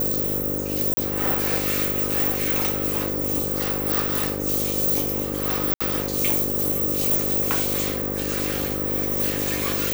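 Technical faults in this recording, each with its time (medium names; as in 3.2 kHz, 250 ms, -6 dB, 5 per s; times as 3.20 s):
buzz 50 Hz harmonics 11 -29 dBFS
0.94–0.97 s: dropout 32 ms
5.74–5.80 s: dropout 65 ms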